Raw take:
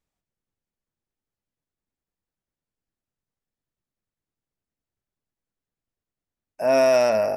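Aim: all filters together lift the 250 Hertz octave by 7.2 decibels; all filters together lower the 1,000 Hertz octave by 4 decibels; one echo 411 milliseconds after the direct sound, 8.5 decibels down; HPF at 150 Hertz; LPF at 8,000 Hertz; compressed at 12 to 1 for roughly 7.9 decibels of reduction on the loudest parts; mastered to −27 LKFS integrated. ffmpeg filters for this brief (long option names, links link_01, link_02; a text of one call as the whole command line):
ffmpeg -i in.wav -af "highpass=150,lowpass=8000,equalizer=frequency=250:width_type=o:gain=8.5,equalizer=frequency=1000:width_type=o:gain=-8.5,acompressor=threshold=-23dB:ratio=12,aecho=1:1:411:0.376,volume=0.5dB" out.wav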